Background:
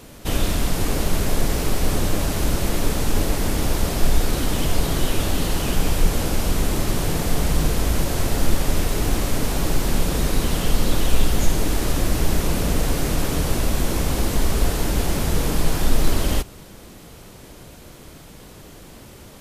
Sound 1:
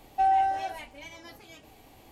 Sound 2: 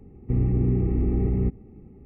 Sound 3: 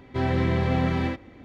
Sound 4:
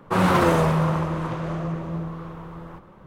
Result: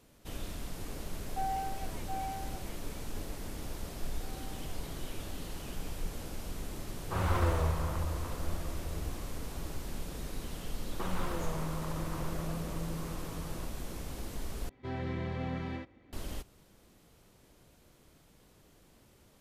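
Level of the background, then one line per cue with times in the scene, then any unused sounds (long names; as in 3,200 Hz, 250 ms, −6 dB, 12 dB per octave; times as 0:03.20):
background −19.5 dB
0:01.18: mix in 1 −12.5 dB + single-tap delay 721 ms −4 dB
0:04.05: mix in 1 −17.5 dB + downward compressor, threshold −37 dBFS
0:07.00: mix in 4 −14 dB + low shelf with overshoot 110 Hz +13 dB, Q 3
0:10.89: mix in 4 −8 dB + downward compressor, threshold −27 dBFS
0:14.69: overwrite with 3 −13 dB
not used: 2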